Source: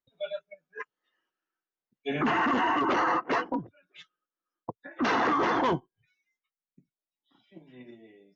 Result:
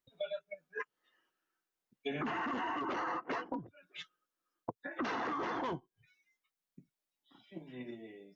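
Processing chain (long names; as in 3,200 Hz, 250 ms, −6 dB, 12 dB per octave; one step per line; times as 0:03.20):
downward compressor 6 to 1, threshold −39 dBFS, peak gain reduction 15 dB
level +3 dB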